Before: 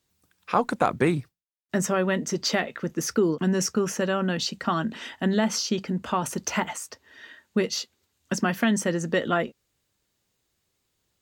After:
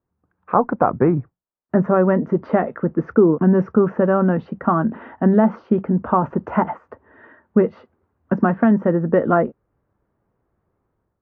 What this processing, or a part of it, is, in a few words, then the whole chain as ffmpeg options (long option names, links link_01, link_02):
action camera in a waterproof case: -af "lowpass=frequency=1300:width=0.5412,lowpass=frequency=1300:width=1.3066,dynaudnorm=framelen=100:gausssize=7:maxgain=10dB" -ar 24000 -c:a aac -b:a 64k